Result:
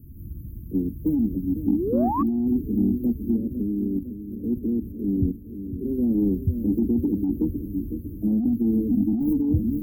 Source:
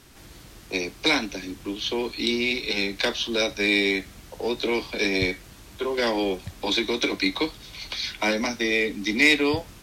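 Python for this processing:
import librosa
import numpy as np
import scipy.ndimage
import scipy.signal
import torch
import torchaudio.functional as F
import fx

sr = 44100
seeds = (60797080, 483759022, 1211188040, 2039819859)

y = fx.level_steps(x, sr, step_db=14, at=(3.36, 5.88))
y = np.clip(y, -10.0 ** (-12.5 / 20.0), 10.0 ** (-12.5 / 20.0))
y = fx.dynamic_eq(y, sr, hz=250.0, q=2.5, threshold_db=-42.0, ratio=4.0, max_db=7)
y = scipy.signal.sosfilt(scipy.signal.cheby2(4, 70, [1000.0, 5700.0], 'bandstop', fs=sr, output='sos'), y)
y = fx.echo_feedback(y, sr, ms=506, feedback_pct=51, wet_db=-10.5)
y = fx.spec_paint(y, sr, seeds[0], shape='rise', start_s=1.67, length_s=0.56, low_hz=230.0, high_hz=1200.0, level_db=-35.0)
y = 10.0 ** (-16.0 / 20.0) * np.tanh(y / 10.0 ** (-16.0 / 20.0))
y = fx.over_compress(y, sr, threshold_db=-29.0, ratio=-1.0)
y = fx.peak_eq(y, sr, hz=78.0, db=8.5, octaves=0.73)
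y = y * 10.0 ** (8.5 / 20.0)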